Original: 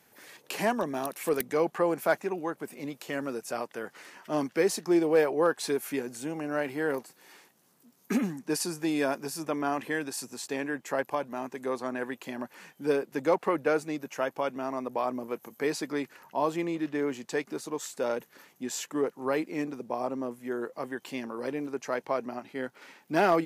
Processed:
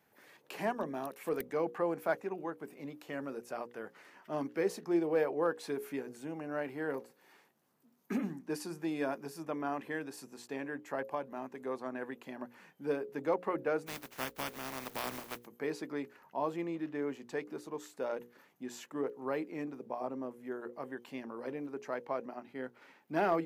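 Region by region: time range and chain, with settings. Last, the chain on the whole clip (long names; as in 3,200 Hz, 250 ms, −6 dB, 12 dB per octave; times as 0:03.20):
0:13.86–0:15.45: compressing power law on the bin magnitudes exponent 0.25 + parametric band 260 Hz +4 dB 0.24 octaves
whole clip: parametric band 8,100 Hz −9.5 dB 2.4 octaves; mains-hum notches 60/120/180/240/300/360/420/480/540 Hz; level −6 dB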